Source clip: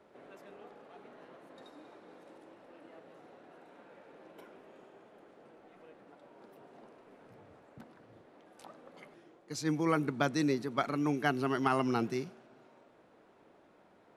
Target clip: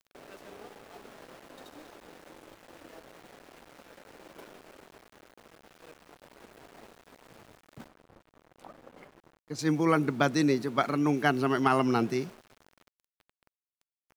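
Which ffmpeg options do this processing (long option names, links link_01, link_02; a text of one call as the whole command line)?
ffmpeg -i in.wav -filter_complex "[0:a]aeval=exprs='val(0)*gte(abs(val(0)),0.00224)':channel_layout=same,asettb=1/sr,asplit=3[link_01][link_02][link_03];[link_01]atrim=end=7.884[link_04];[link_02]atrim=start=7.88:end=9.59,asetpts=PTS-STARTPTS,afade=type=in:duration=0.004:curve=qsin,afade=type=out:start_time=1.706:duration=0.004:curve=qsin,highshelf=frequency=2200:gain=-11.5[link_05];[link_03]atrim=start=9.586[link_06];[link_04][link_05]acrossfade=duration=0.004:curve1=hsin:curve2=qsin[link_07];[link_07][link_06]acrossfade=duration=0.004:curve1=qsin:curve2=hsin,volume=5dB" out.wav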